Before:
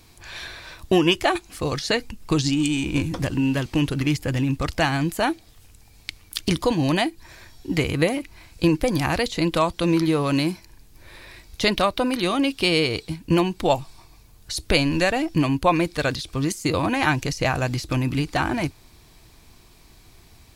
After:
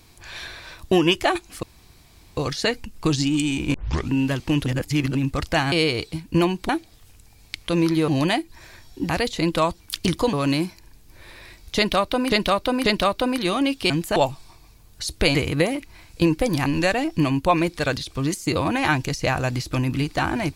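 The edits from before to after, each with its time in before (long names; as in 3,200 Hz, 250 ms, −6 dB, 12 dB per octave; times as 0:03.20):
0:01.63: splice in room tone 0.74 s
0:03.00: tape start 0.37 s
0:03.92–0:04.41: reverse
0:04.98–0:05.24: swap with 0:12.68–0:13.65
0:06.23–0:06.76: swap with 0:09.79–0:10.19
0:07.77–0:09.08: move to 0:14.84
0:11.63–0:12.17: repeat, 3 plays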